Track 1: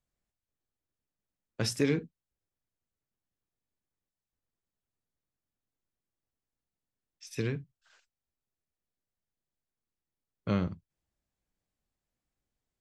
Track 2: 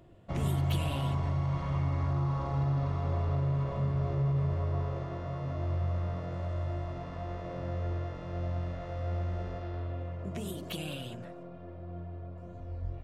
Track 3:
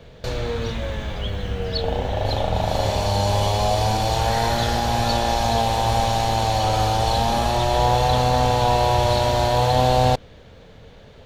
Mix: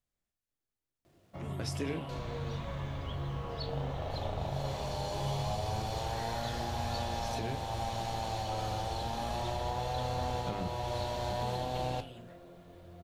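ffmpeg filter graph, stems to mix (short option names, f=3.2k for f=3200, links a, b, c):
-filter_complex "[0:a]volume=2dB[a];[1:a]lowshelf=f=74:g=-12,acrusher=bits=10:mix=0:aa=0.000001,acrossover=split=3000[b][c];[c]acompressor=threshold=-55dB:ratio=4:attack=1:release=60[d];[b][d]amix=inputs=2:normalize=0,adelay=1050,volume=-2dB[e];[2:a]adelay=1850,volume=-11dB[f];[a][f]amix=inputs=2:normalize=0,bandreject=f=50:t=h:w=6,bandreject=f=100:t=h:w=6,bandreject=f=150:t=h:w=6,bandreject=f=200:t=h:w=6,alimiter=limit=-20.5dB:level=0:latency=1:release=415,volume=0dB[g];[e][g]amix=inputs=2:normalize=0,flanger=delay=9.3:depth=9.3:regen=-65:speed=0.7:shape=sinusoidal"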